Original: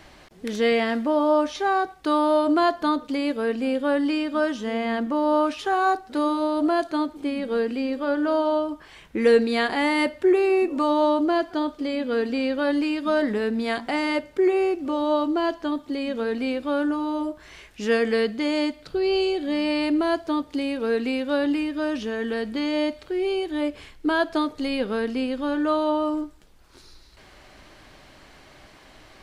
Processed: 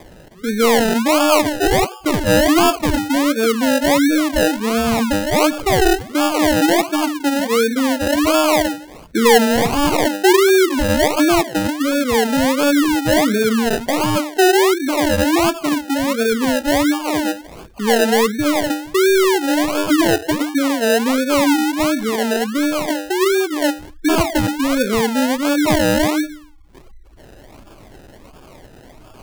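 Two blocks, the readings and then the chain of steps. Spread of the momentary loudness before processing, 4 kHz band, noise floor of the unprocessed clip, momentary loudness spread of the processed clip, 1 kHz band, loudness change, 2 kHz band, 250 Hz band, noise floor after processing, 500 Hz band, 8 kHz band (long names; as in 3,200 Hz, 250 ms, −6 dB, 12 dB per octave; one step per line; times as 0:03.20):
7 LU, +11.5 dB, −51 dBFS, 6 LU, +7.0 dB, +7.5 dB, +9.0 dB, +7.5 dB, −43 dBFS, +6.5 dB, can't be measured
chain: stylus tracing distortion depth 0.22 ms
hum removal 60.15 Hz, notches 27
gate on every frequency bin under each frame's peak −15 dB strong
in parallel at 0 dB: brickwall limiter −19 dBFS, peak gain reduction 10.5 dB
on the sum: sample-and-hold swept by an LFO 31×, swing 60% 1.4 Hz
level +3.5 dB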